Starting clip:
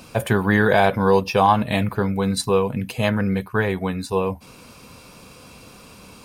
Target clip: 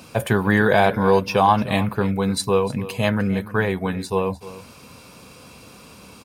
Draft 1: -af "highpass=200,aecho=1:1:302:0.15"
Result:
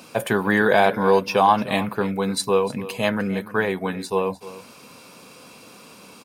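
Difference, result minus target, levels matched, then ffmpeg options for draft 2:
125 Hz band −6.0 dB
-af "highpass=56,aecho=1:1:302:0.15"

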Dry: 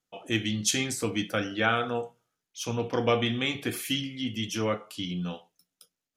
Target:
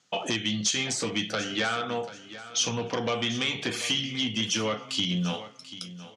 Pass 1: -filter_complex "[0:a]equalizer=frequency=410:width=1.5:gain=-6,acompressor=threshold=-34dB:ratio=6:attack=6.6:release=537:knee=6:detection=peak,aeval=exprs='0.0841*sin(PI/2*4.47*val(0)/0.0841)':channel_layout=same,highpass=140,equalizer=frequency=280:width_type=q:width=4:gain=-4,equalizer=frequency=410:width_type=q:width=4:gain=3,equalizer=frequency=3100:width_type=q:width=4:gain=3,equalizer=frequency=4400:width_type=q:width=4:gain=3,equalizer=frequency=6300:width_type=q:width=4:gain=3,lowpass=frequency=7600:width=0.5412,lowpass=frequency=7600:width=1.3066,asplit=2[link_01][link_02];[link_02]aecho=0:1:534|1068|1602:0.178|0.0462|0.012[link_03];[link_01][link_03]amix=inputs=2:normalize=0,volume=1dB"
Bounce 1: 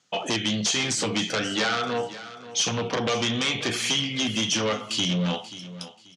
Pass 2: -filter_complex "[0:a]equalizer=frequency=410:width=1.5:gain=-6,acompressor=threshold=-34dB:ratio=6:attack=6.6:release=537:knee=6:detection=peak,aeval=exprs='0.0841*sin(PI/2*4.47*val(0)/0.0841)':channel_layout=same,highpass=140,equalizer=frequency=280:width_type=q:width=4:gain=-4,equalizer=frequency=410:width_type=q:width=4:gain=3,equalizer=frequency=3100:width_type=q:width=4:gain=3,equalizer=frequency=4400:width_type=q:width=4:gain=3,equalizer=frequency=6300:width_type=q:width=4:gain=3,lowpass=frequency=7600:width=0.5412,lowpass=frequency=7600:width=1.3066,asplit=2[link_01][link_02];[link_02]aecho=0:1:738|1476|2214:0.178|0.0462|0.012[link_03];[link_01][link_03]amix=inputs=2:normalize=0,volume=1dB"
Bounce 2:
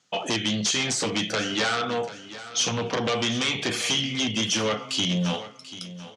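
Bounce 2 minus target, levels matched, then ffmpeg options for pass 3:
downward compressor: peak gain reduction −5.5 dB
-filter_complex "[0:a]equalizer=frequency=410:width=1.5:gain=-6,acompressor=threshold=-40.5dB:ratio=6:attack=6.6:release=537:knee=6:detection=peak,aeval=exprs='0.0841*sin(PI/2*4.47*val(0)/0.0841)':channel_layout=same,highpass=140,equalizer=frequency=280:width_type=q:width=4:gain=-4,equalizer=frequency=410:width_type=q:width=4:gain=3,equalizer=frequency=3100:width_type=q:width=4:gain=3,equalizer=frequency=4400:width_type=q:width=4:gain=3,equalizer=frequency=6300:width_type=q:width=4:gain=3,lowpass=frequency=7600:width=0.5412,lowpass=frequency=7600:width=1.3066,asplit=2[link_01][link_02];[link_02]aecho=0:1:738|1476|2214:0.178|0.0462|0.012[link_03];[link_01][link_03]amix=inputs=2:normalize=0,volume=1dB"

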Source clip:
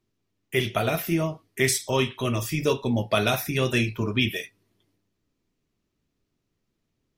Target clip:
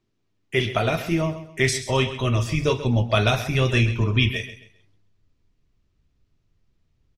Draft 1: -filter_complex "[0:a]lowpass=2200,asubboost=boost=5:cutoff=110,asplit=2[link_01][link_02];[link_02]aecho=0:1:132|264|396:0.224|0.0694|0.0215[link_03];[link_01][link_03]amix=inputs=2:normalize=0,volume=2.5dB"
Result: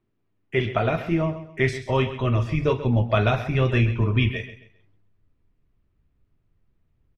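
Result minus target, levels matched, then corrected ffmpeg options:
8,000 Hz band −16.0 dB
-filter_complex "[0:a]lowpass=6300,asubboost=boost=5:cutoff=110,asplit=2[link_01][link_02];[link_02]aecho=0:1:132|264|396:0.224|0.0694|0.0215[link_03];[link_01][link_03]amix=inputs=2:normalize=0,volume=2.5dB"

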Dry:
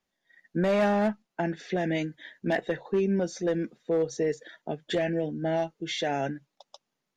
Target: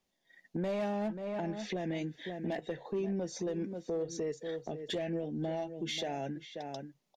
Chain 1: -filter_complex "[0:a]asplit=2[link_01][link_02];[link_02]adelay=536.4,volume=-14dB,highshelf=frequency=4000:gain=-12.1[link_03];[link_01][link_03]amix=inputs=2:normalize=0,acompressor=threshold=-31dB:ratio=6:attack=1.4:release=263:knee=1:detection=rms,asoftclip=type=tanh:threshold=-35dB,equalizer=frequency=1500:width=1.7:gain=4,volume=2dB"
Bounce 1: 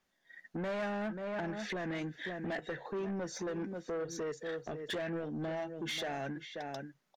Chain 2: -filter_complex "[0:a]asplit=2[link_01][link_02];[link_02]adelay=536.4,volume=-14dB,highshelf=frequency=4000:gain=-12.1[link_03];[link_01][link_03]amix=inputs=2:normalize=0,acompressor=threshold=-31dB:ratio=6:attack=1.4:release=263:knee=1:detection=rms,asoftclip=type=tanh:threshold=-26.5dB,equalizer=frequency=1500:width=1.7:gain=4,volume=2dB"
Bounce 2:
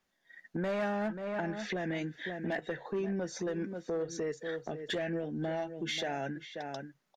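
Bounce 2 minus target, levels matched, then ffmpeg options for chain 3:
2,000 Hz band +6.5 dB
-filter_complex "[0:a]asplit=2[link_01][link_02];[link_02]adelay=536.4,volume=-14dB,highshelf=frequency=4000:gain=-12.1[link_03];[link_01][link_03]amix=inputs=2:normalize=0,acompressor=threshold=-31dB:ratio=6:attack=1.4:release=263:knee=1:detection=rms,asoftclip=type=tanh:threshold=-26.5dB,equalizer=frequency=1500:width=1.7:gain=-7.5,volume=2dB"

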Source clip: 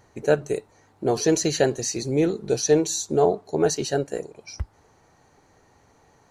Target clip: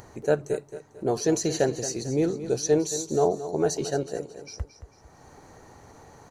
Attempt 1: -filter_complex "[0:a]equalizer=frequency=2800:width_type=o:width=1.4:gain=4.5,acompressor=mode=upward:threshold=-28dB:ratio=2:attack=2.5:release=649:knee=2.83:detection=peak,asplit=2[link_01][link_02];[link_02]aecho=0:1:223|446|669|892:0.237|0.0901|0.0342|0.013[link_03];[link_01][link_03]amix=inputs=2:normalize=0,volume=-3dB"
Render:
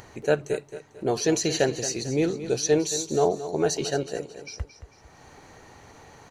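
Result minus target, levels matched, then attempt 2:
2,000 Hz band +4.0 dB
-filter_complex "[0:a]equalizer=frequency=2800:width_type=o:width=1.4:gain=-5,acompressor=mode=upward:threshold=-28dB:ratio=2:attack=2.5:release=649:knee=2.83:detection=peak,asplit=2[link_01][link_02];[link_02]aecho=0:1:223|446|669|892:0.237|0.0901|0.0342|0.013[link_03];[link_01][link_03]amix=inputs=2:normalize=0,volume=-3dB"

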